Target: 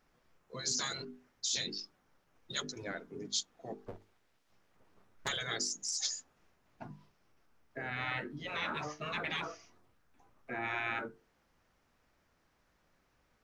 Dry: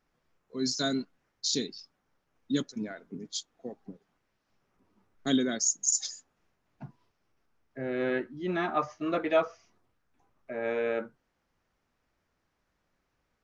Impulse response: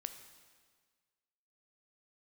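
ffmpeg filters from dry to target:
-filter_complex "[0:a]asplit=3[a][b][c];[a]afade=t=out:st=3.85:d=0.02[d];[b]aeval=exprs='abs(val(0))':c=same,afade=t=in:st=3.85:d=0.02,afade=t=out:st=5.27:d=0.02[e];[c]afade=t=in:st=5.27:d=0.02[f];[d][e][f]amix=inputs=3:normalize=0,bandreject=f=50:t=h:w=6,bandreject=f=100:t=h:w=6,bandreject=f=150:t=h:w=6,bandreject=f=200:t=h:w=6,bandreject=f=250:t=h:w=6,bandreject=f=300:t=h:w=6,bandreject=f=350:t=h:w=6,bandreject=f=400:t=h:w=6,bandreject=f=450:t=h:w=6,afftfilt=real='re*lt(hypot(re,im),0.0562)':imag='im*lt(hypot(re,im),0.0562)':win_size=1024:overlap=0.75,volume=4.5dB"

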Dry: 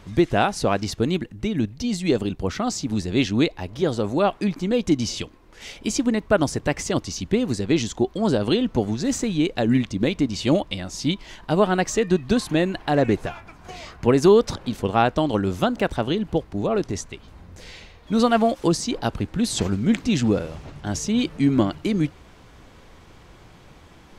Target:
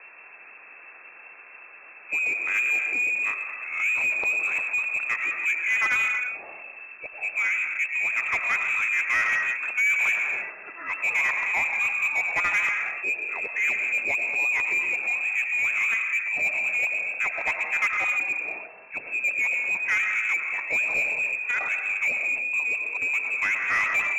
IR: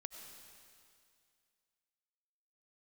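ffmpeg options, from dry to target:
-filter_complex "[0:a]areverse,lowpass=f=2.3k:t=q:w=0.5098,lowpass=f=2.3k:t=q:w=0.6013,lowpass=f=2.3k:t=q:w=0.9,lowpass=f=2.3k:t=q:w=2.563,afreqshift=-2700[a];[1:a]atrim=start_sample=2205,afade=t=out:st=0.4:d=0.01,atrim=end_sample=18081[b];[a][b]afir=irnorm=-1:irlink=0,asplit=2[c][d];[d]highpass=f=720:p=1,volume=19dB,asoftclip=type=tanh:threshold=-9dB[e];[c][e]amix=inputs=2:normalize=0,lowpass=f=1k:p=1,volume=-6dB"

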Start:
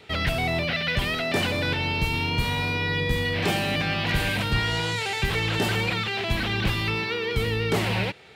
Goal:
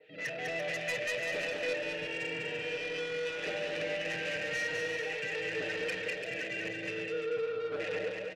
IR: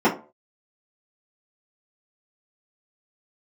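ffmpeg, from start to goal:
-filter_complex "[0:a]afwtdn=0.0501,highpass=f=100:w=0.5412,highpass=f=100:w=1.3066,aecho=1:1:6.5:0.98,acompressor=mode=upward:threshold=-38dB:ratio=2.5,asplit=3[a][b][c];[a]bandpass=f=530:t=q:w=8,volume=0dB[d];[b]bandpass=f=1.84k:t=q:w=8,volume=-6dB[e];[c]bandpass=f=2.48k:t=q:w=8,volume=-9dB[f];[d][e][f]amix=inputs=3:normalize=0,asoftclip=type=tanh:threshold=-35dB,asplit=2[g][h];[h]aecho=0:1:200|340|438|506.6|554.6:0.631|0.398|0.251|0.158|0.1[i];[g][i]amix=inputs=2:normalize=0,adynamicequalizer=threshold=0.00141:dfrequency=2000:dqfactor=0.7:tfrequency=2000:tqfactor=0.7:attack=5:release=100:ratio=0.375:range=2.5:mode=boostabove:tftype=highshelf,volume=1.5dB"

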